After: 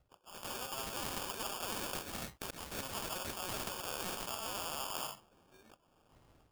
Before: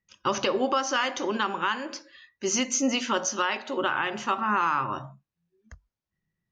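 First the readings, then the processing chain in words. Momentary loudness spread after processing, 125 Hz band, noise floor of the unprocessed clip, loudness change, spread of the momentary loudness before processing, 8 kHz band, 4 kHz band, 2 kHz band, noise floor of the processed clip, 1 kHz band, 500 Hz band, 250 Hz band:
5 LU, −7.5 dB, below −85 dBFS, −13.0 dB, 9 LU, −11.5 dB, −9.5 dB, −16.0 dB, −71 dBFS, −16.0 dB, −15.5 dB, −18.5 dB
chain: running median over 9 samples
in parallel at −5.5 dB: wave folding −23.5 dBFS
on the sum: brickwall limiter −26 dBFS, peak gain reduction 9.5 dB
high-pass filter 1,100 Hz 12 dB per octave
reversed playback
downward compressor 10 to 1, threshold −47 dBFS, peak gain reduction 16.5 dB
reversed playback
volume swells 303 ms
Butterworth low-pass 7,700 Hz 36 dB per octave
decimation without filtering 22×
automatic gain control gain up to 11 dB
every bin compressed towards the loudest bin 2 to 1
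level +4.5 dB

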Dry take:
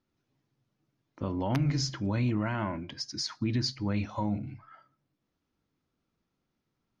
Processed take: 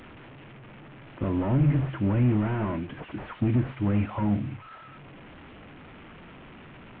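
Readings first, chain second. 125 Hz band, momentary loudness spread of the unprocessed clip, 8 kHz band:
+6.0 dB, 8 LU, can't be measured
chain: linear delta modulator 16 kbit/s, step −47 dBFS
level +6.5 dB

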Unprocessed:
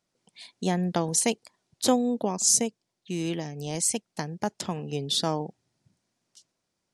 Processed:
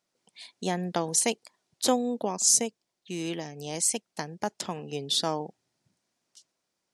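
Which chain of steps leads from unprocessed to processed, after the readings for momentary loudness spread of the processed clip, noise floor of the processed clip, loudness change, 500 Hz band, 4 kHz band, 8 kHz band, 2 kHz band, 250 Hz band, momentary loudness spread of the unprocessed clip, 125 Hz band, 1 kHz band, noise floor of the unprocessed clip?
14 LU, −82 dBFS, −0.5 dB, −1.5 dB, 0.0 dB, 0.0 dB, 0.0 dB, −4.0 dB, 12 LU, −6.0 dB, −0.5 dB, −81 dBFS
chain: low-shelf EQ 180 Hz −11.5 dB

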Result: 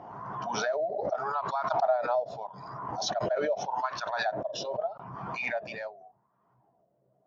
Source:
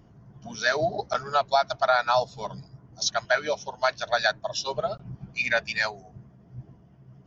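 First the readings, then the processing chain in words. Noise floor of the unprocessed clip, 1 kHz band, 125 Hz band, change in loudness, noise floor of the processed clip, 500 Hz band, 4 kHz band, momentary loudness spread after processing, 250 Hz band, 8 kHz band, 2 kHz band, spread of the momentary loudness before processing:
−55 dBFS, −4.0 dB, −5.5 dB, −5.5 dB, −71 dBFS, −2.5 dB, −9.5 dB, 12 LU, −1.0 dB, can't be measured, −10.0 dB, 16 LU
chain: LFO wah 0.82 Hz 550–1,100 Hz, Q 5.3
background raised ahead of every attack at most 29 dB per second

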